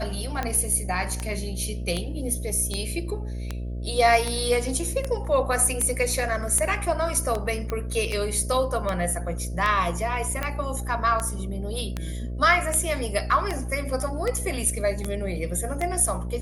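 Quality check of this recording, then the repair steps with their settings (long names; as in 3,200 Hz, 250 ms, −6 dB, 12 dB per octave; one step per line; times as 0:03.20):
mains buzz 60 Hz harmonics 11 −31 dBFS
scratch tick 78 rpm −13 dBFS
0:07.70: click −16 dBFS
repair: click removal
hum removal 60 Hz, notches 11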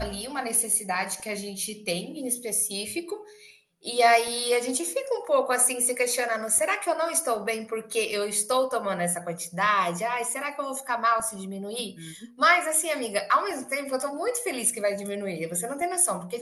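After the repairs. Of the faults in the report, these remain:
none of them is left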